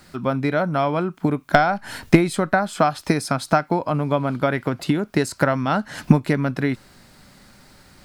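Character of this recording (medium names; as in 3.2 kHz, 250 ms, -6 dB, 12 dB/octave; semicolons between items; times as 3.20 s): noise floor -51 dBFS; spectral tilt -5.5 dB/octave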